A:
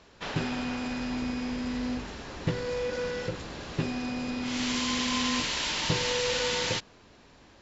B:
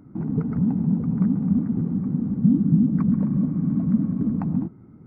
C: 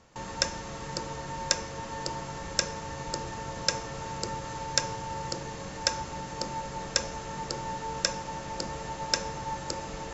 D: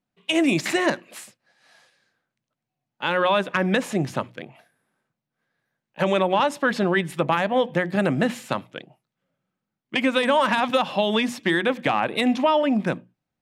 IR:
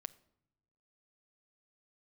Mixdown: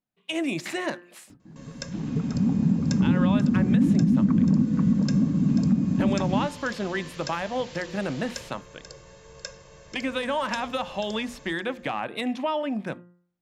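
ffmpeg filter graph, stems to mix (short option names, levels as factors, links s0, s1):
-filter_complex "[0:a]adelay=1700,volume=0.15[s0];[1:a]dynaudnorm=f=140:g=9:m=2.24,adelay=1300,volume=0.944,asplit=3[s1][s2][s3];[s2]volume=0.15[s4];[s3]volume=0.596[s5];[2:a]bandreject=f=900:w=9.5,aecho=1:1:1.9:0.85,adelay=1400,volume=0.188,asplit=3[s6][s7][s8];[s7]volume=0.376[s9];[s8]volume=0.335[s10];[3:a]volume=0.422,asplit=2[s11][s12];[s12]apad=whole_len=280575[s13];[s1][s13]sidechaingate=range=0.0224:threshold=0.00126:ratio=16:detection=peak[s14];[4:a]atrim=start_sample=2205[s15];[s4][s9]amix=inputs=2:normalize=0[s16];[s16][s15]afir=irnorm=-1:irlink=0[s17];[s5][s10]amix=inputs=2:normalize=0,aecho=0:1:487:1[s18];[s0][s14][s6][s11][s17][s18]amix=inputs=6:normalize=0,bandreject=f=175.8:t=h:w=4,bandreject=f=351.6:t=h:w=4,bandreject=f=527.4:t=h:w=4,bandreject=f=703.2:t=h:w=4,bandreject=f=879:t=h:w=4,bandreject=f=1054.8:t=h:w=4,bandreject=f=1230.6:t=h:w=4,bandreject=f=1406.4:t=h:w=4,bandreject=f=1582.2:t=h:w=4,bandreject=f=1758:t=h:w=4,bandreject=f=1933.8:t=h:w=4,alimiter=limit=0.251:level=0:latency=1:release=203"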